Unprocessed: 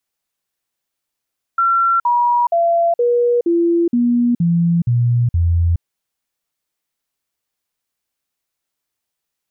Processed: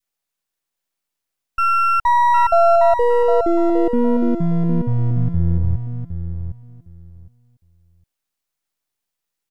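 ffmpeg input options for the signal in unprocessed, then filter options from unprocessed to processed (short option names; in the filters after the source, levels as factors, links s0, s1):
-f lavfi -i "aevalsrc='0.266*clip(min(mod(t,0.47),0.42-mod(t,0.47))/0.005,0,1)*sin(2*PI*1360*pow(2,-floor(t/0.47)/2)*mod(t,0.47))':d=4.23:s=44100"
-filter_complex "[0:a]aeval=exprs='if(lt(val(0),0),0.251*val(0),val(0))':c=same,adynamicequalizer=threshold=0.0282:dfrequency=750:dqfactor=1.2:tfrequency=750:tqfactor=1.2:attack=5:release=100:ratio=0.375:range=3:mode=boostabove:tftype=bell,asplit=2[s0][s1];[s1]aecho=0:1:760|1520|2280:0.398|0.0717|0.0129[s2];[s0][s2]amix=inputs=2:normalize=0"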